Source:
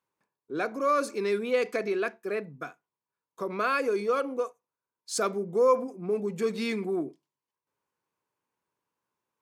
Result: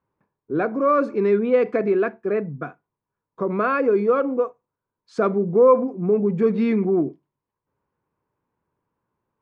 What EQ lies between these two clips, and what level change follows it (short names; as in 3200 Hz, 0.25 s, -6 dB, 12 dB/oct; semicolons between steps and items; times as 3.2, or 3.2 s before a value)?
LPF 1700 Hz 12 dB/oct; low shelf 99 Hz +10 dB; low shelf 350 Hz +7 dB; +5.5 dB